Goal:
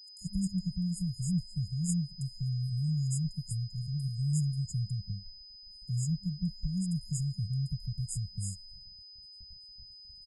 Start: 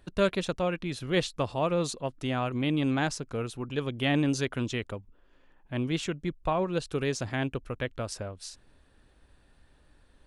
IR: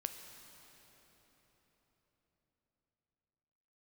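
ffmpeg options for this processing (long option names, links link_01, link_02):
-filter_complex "[0:a]afftfilt=real='re*(1-between(b*sr/4096,200,6600))':imag='im*(1-between(b*sr/4096,200,6600))':win_size=4096:overlap=0.75,agate=range=-52dB:threshold=-57dB:ratio=16:detection=peak,adynamicequalizer=threshold=0.00224:dfrequency=920:dqfactor=8:tfrequency=920:tqfactor=8:attack=5:release=100:ratio=0.375:range=2:mode=cutabove:tftype=bell,asplit=2[link_01][link_02];[link_02]acompressor=threshold=-41dB:ratio=5,volume=1dB[link_03];[link_01][link_03]amix=inputs=2:normalize=0,aeval=exprs='val(0)+0.00355*sin(2*PI*5000*n/s)':channel_layout=same,acrossover=split=1100[link_04][link_05];[link_04]adelay=180[link_06];[link_06][link_05]amix=inputs=2:normalize=0"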